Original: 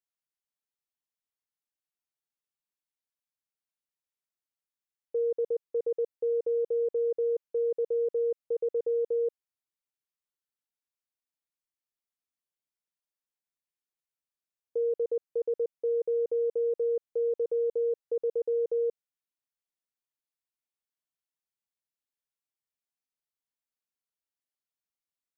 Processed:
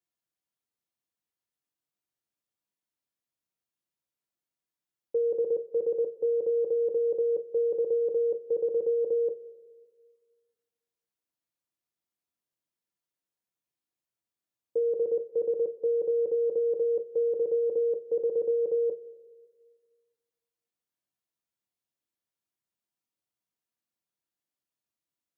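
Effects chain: HPF 160 Hz 6 dB/oct; low shelf 490 Hz +10.5 dB; two-slope reverb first 0.21 s, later 1.7 s, from -19 dB, DRR 3 dB; gain -2 dB

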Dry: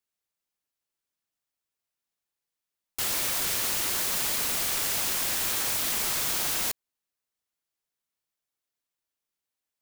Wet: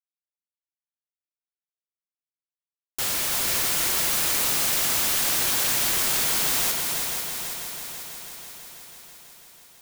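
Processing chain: companded quantiser 2-bit; on a send: multi-head echo 0.164 s, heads second and third, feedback 66%, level -6 dB

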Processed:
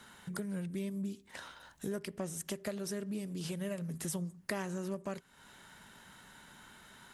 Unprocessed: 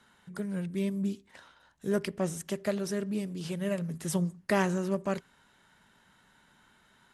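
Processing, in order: high shelf 7500 Hz +8 dB; compressor 4:1, threshold -45 dBFS, peak gain reduction 19 dB; gain +6.5 dB

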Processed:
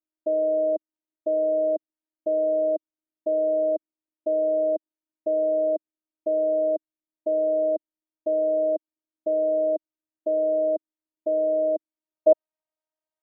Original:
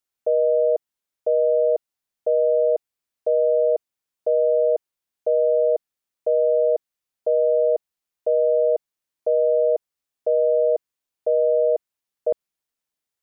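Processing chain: band-pass sweep 320 Hz -> 650 Hz, 11.85–12.38; robotiser 313 Hz; gain +8.5 dB

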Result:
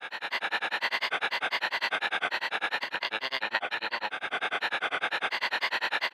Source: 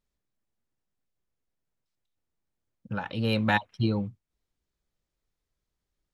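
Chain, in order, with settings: per-bin compression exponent 0.2; recorder AGC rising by 27 dB/s; HPF 1000 Hz 12 dB/oct; high shelf 6500 Hz -8.5 dB; on a send: frequency-shifting echo 0.432 s, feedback 55%, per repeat -32 Hz, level -11 dB; on the sum: grains, grains 10/s, pitch spread up and down by 3 st

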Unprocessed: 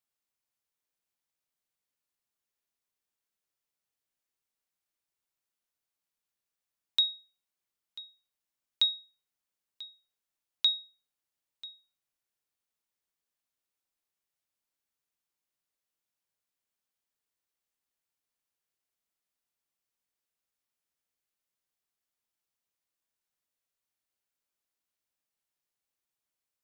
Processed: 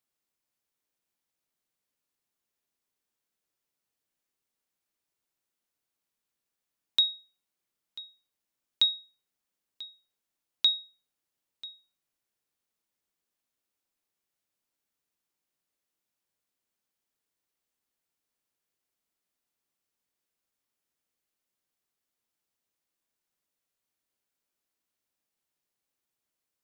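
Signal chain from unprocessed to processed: bell 280 Hz +4.5 dB 1.8 oct; gain +2 dB

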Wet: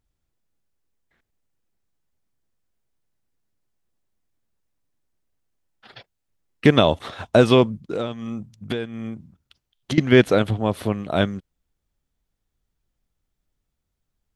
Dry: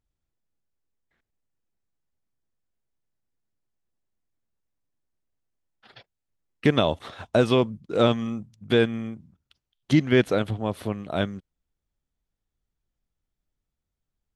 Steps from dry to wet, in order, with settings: 7.78–9.98 compressor 8:1, threshold -30 dBFS, peak gain reduction 16 dB; gain +5.5 dB

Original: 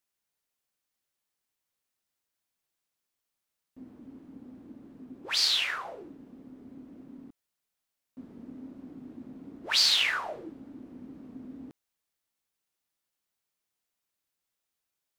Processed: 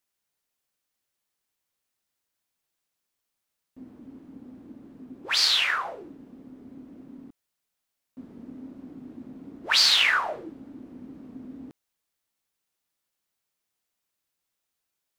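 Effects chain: dynamic EQ 1300 Hz, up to +6 dB, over -43 dBFS, Q 0.73; gain +2.5 dB

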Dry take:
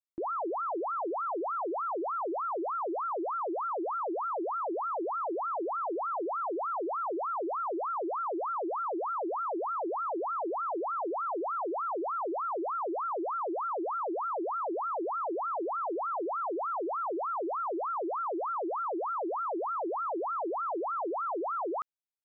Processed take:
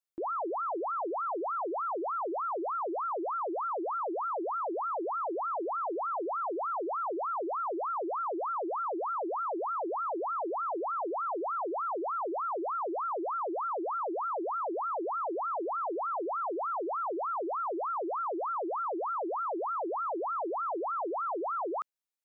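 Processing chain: tone controls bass -6 dB, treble +2 dB

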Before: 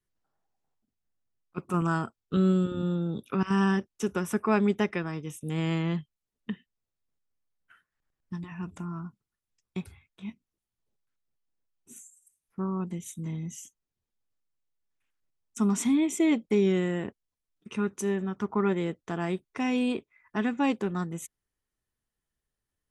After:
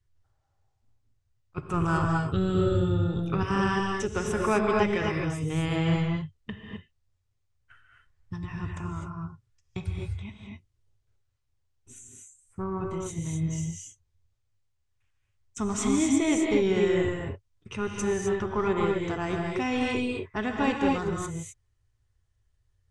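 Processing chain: in parallel at -10 dB: soft clip -28 dBFS, distortion -9 dB; on the sum: LPF 8400 Hz 24 dB/oct; resonant low shelf 140 Hz +11.5 dB, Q 3; non-linear reverb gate 0.28 s rising, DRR 0 dB

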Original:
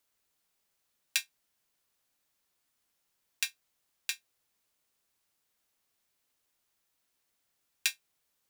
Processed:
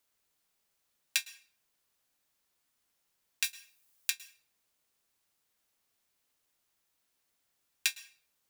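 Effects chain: 3.44–4.1 high shelf 6800 Hz +10.5 dB; reverb RT60 0.50 s, pre-delay 0.105 s, DRR 17.5 dB

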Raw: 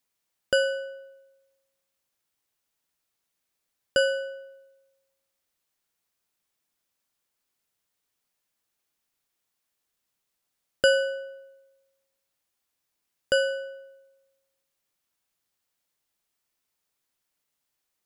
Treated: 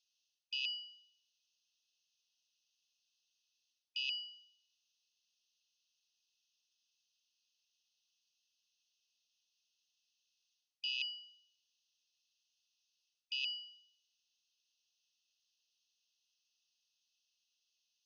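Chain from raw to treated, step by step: rattling part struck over -43 dBFS, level -17 dBFS; brick-wall FIR band-pass 2500–6600 Hz; reverse; compressor 10:1, threshold -41 dBFS, peak gain reduction 17 dB; reverse; gain +4.5 dB

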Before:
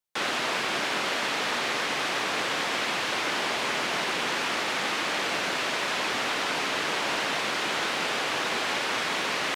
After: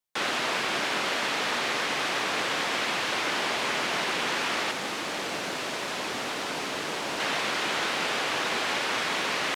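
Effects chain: 4.71–7.2 bell 2000 Hz -5.5 dB 2.9 oct

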